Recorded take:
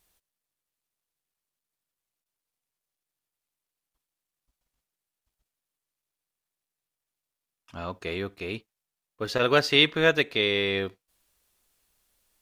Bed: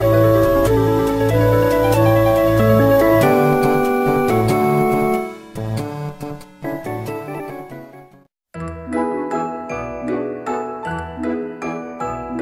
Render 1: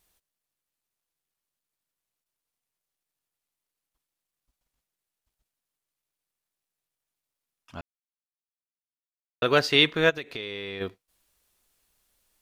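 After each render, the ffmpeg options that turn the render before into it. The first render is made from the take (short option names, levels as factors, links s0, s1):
-filter_complex "[0:a]asplit=3[s0][s1][s2];[s0]afade=t=out:st=10.09:d=0.02[s3];[s1]acompressor=threshold=0.0251:ratio=5:attack=3.2:release=140:knee=1:detection=peak,afade=t=in:st=10.09:d=0.02,afade=t=out:st=10.8:d=0.02[s4];[s2]afade=t=in:st=10.8:d=0.02[s5];[s3][s4][s5]amix=inputs=3:normalize=0,asplit=3[s6][s7][s8];[s6]atrim=end=7.81,asetpts=PTS-STARTPTS,afade=t=out:st=7.806:d=0.004:c=hsin[s9];[s7]atrim=start=7.81:end=9.42,asetpts=PTS-STARTPTS,volume=0[s10];[s8]atrim=start=9.42,asetpts=PTS-STARTPTS,afade=t=in:d=0.004:c=hsin[s11];[s9][s10][s11]concat=n=3:v=0:a=1"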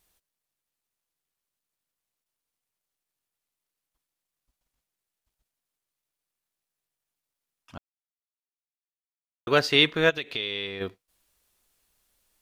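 -filter_complex "[0:a]asettb=1/sr,asplit=3[s0][s1][s2];[s0]atrim=end=10.104[s3];[s1]atrim=start=10.1:end=10.67,asetpts=PTS-STARTPTS,afade=t=in:d=0.004:c=qsin,afade=t=out:st=0.566:d=0.004:c=qsin,equalizer=f=3200:t=o:w=0.82:g=8.5[s4];[s2]atrim=start=10.666[s5];[s3][s4]acrossfade=d=0.004:c1=hsin:c2=qsin[s6];[s6][s5]acrossfade=d=0.004:c1=qsin:c2=hsin,asplit=3[s7][s8][s9];[s7]atrim=end=7.78,asetpts=PTS-STARTPTS,afade=t=out:st=7.776:d=0.004:c=hsin[s10];[s8]atrim=start=7.78:end=9.47,asetpts=PTS-STARTPTS,volume=0[s11];[s9]atrim=start=9.47,asetpts=PTS-STARTPTS,afade=t=in:d=0.004:c=hsin[s12];[s10][s11][s12]concat=n=3:v=0:a=1"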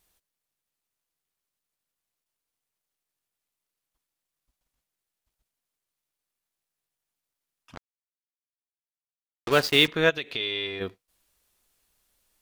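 -filter_complex "[0:a]asettb=1/sr,asplit=3[s0][s1][s2];[s0]atrim=end=7.754[s3];[s1]atrim=start=7.75:end=9.88,asetpts=PTS-STARTPTS,afade=t=in:d=0.004:c=qsin,afade=t=out:st=2.126:d=0.004:c=qsin,acrusher=bits=4:mix=0:aa=0.5[s4];[s2]atrim=start=9.876[s5];[s3][s4]acrossfade=d=0.004:c1=hsin:c2=qsin[s6];[s6][s5]acrossfade=d=0.004:c1=qsin:c2=hsin,asettb=1/sr,asplit=3[s7][s8][s9];[s7]atrim=end=10.404[s10];[s8]atrim=start=10.4:end=10.8,asetpts=PTS-STARTPTS,afade=t=in:d=0.004:c=qsin,afade=t=out:st=0.396:d=0.004:c=qsin,aecho=1:1:2.9:0.55,atrim=end_sample=17640[s11];[s9]atrim=start=10.796[s12];[s10][s11]acrossfade=d=0.004:c1=hsin:c2=qsin[s13];[s13][s12]acrossfade=d=0.004:c1=qsin:c2=hsin"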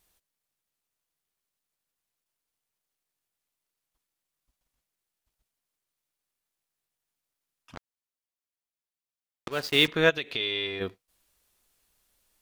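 -filter_complex "[0:a]asplit=2[s0][s1];[s0]atrim=end=9.48,asetpts=PTS-STARTPTS,afade=t=out:st=9.476:d=0.004:c=hsin:silence=0.133352[s2];[s1]atrim=start=9.48,asetpts=PTS-STARTPTS,afade=t=in:d=0.43:silence=0.133352[s3];[s2][s3]concat=n=2:v=0:a=1"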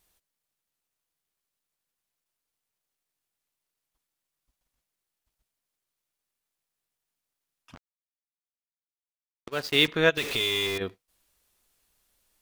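-filter_complex "[0:a]asplit=3[s0][s1][s2];[s0]afade=t=out:st=7.75:d=0.02[s3];[s1]agate=range=0.0224:threshold=0.0178:ratio=3:release=100:detection=peak,afade=t=in:st=7.75:d=0.02,afade=t=out:st=9.65:d=0.02[s4];[s2]afade=t=in:st=9.65:d=0.02[s5];[s3][s4][s5]amix=inputs=3:normalize=0,asettb=1/sr,asplit=3[s6][s7][s8];[s6]atrim=end=10.174[s9];[s7]atrim=start=10.17:end=10.78,asetpts=PTS-STARTPTS,afade=t=in:d=0.004:c=qsin,afade=t=out:st=0.606:d=0.004:c=qsin,aeval=exprs='val(0)+0.5*0.0335*sgn(val(0))':c=same[s10];[s8]atrim=start=10.776[s11];[s9][s10]acrossfade=d=0.004:c1=hsin:c2=qsin[s12];[s12][s11]acrossfade=d=0.004:c1=qsin:c2=hsin"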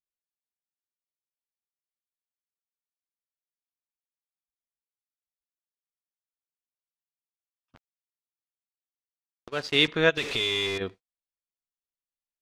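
-af "lowpass=7200,agate=range=0.0251:threshold=0.00562:ratio=16:detection=peak"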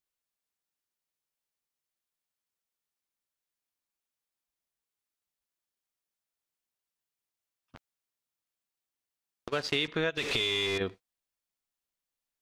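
-filter_complex "[0:a]asplit=2[s0][s1];[s1]alimiter=limit=0.158:level=0:latency=1,volume=0.794[s2];[s0][s2]amix=inputs=2:normalize=0,acompressor=threshold=0.0447:ratio=6"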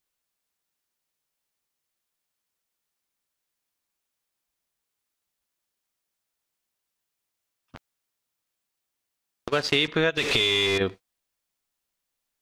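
-af "volume=2.24"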